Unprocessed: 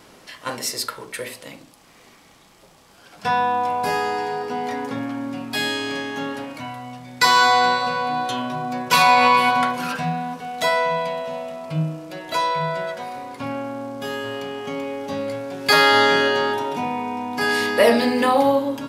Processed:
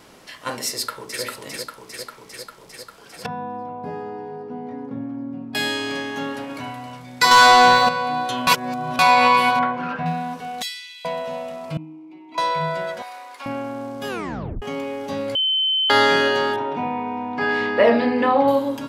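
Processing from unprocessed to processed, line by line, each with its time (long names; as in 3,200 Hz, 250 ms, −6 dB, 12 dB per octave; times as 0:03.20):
0:00.69–0:01.23: delay throw 400 ms, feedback 75%, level −4 dB
0:03.26–0:05.55: resonant band-pass 180 Hz, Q 0.82
0:06.22–0:06.76: delay throw 270 ms, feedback 15%, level −10.5 dB
0:07.31–0:07.89: leveller curve on the samples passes 2
0:08.47–0:08.99: reverse
0:09.59–0:10.06: low-pass filter 1,900 Hz
0:10.62–0:11.05: inverse Chebyshev high-pass filter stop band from 830 Hz, stop band 60 dB
0:11.77–0:12.38: formant filter u
0:13.02–0:13.46: high-pass filter 910 Hz
0:14.08: tape stop 0.54 s
0:15.35–0:15.90: beep over 3,070 Hz −17 dBFS
0:16.56–0:18.48: low-pass filter 2,400 Hz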